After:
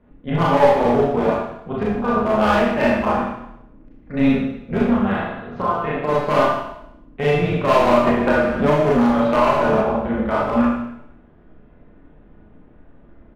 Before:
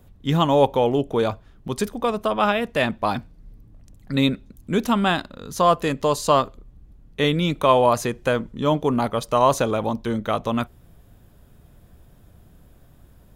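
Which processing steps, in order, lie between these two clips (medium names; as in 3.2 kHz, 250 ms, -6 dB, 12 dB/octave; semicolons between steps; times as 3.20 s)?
low-pass 2.3 kHz 24 dB/octave; bass shelf 130 Hz -3 dB; comb 4.9 ms, depth 54%; feedback delay 75 ms, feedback 46%, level -13.5 dB; 4.88–6.09 s: compression 20:1, threshold -19 dBFS, peak gain reduction 10 dB; AM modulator 290 Hz, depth 65%; hard clipper -15.5 dBFS, distortion -11 dB; Schroeder reverb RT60 0.77 s, combs from 26 ms, DRR -6 dB; 8.07–9.81 s: three bands compressed up and down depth 100%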